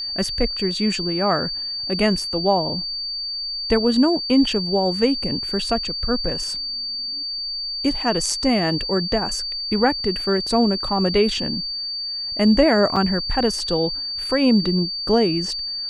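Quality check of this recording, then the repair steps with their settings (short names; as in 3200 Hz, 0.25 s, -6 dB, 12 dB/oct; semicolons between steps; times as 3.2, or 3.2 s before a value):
tone 4600 Hz -25 dBFS
12.96–12.97 gap 5.2 ms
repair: notch 4600 Hz, Q 30; interpolate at 12.96, 5.2 ms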